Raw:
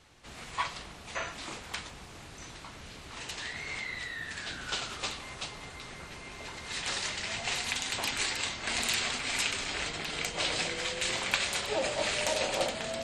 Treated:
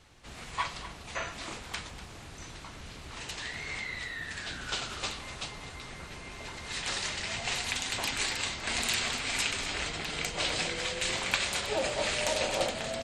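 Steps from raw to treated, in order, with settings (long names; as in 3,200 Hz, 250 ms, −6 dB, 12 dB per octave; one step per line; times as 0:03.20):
low-shelf EQ 110 Hz +5 dB
on a send: single-tap delay 245 ms −14 dB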